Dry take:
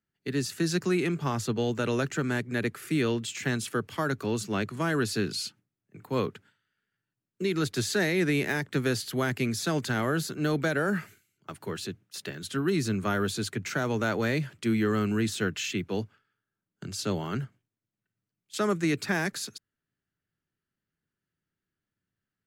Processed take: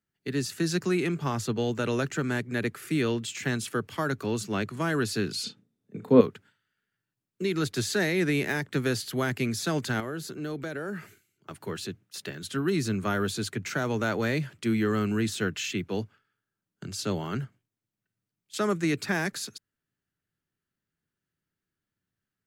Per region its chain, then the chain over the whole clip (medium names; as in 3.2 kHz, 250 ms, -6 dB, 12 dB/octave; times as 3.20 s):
5.43–6.21 s: low-pass that closes with the level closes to 2.6 kHz, closed at -29.5 dBFS + doubling 35 ms -9.5 dB + small resonant body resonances 230/440/3600 Hz, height 15 dB, ringing for 30 ms
10.00–11.51 s: peaking EQ 380 Hz +4.5 dB 0.74 oct + compression 2:1, threshold -38 dBFS
whole clip: none